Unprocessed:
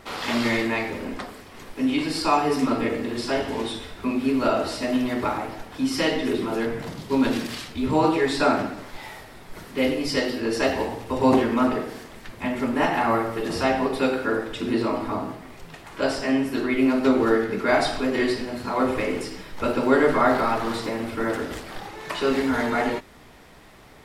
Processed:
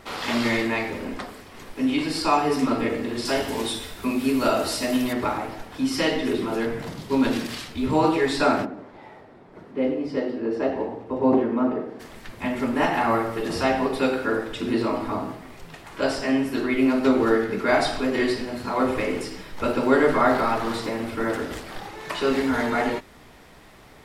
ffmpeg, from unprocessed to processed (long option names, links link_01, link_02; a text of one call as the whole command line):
ffmpeg -i in.wav -filter_complex "[0:a]asettb=1/sr,asplit=3[link_01][link_02][link_03];[link_01]atrim=end=3.254[link_04];[link_02]atrim=start=3.25:end=5.13,asetpts=PTS-STARTPTS,afade=type=in:duration=0.004:curve=qsin,afade=type=out:start_time=1.876:duration=0.004:curve=qsin,aemphasis=mode=production:type=50kf[link_05];[link_03]atrim=start=5.126[link_06];[link_04][link_05]acrossfade=duration=0.004:curve1=hsin:curve2=qsin[link_07];[link_07][link_06]acrossfade=duration=0.004:curve1=qsin:curve2=hsin,asplit=3[link_08][link_09][link_10];[link_08]afade=type=out:start_time=8.64:duration=0.02[link_11];[link_09]bandpass=frequency=360:width_type=q:width=0.63,afade=type=in:start_time=8.64:duration=0.02,afade=type=out:start_time=11.99:duration=0.02[link_12];[link_10]afade=type=in:start_time=11.99:duration=0.02[link_13];[link_11][link_12][link_13]amix=inputs=3:normalize=0" out.wav